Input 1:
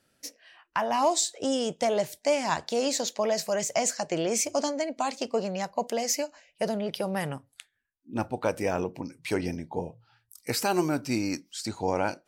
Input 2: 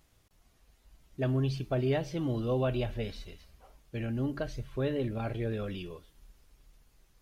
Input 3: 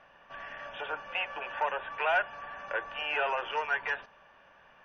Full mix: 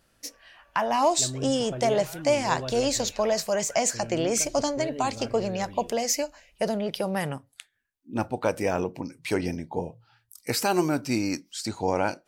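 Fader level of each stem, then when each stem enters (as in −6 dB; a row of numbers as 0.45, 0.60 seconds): +2.0, −5.5, −19.5 decibels; 0.00, 0.00, 0.00 seconds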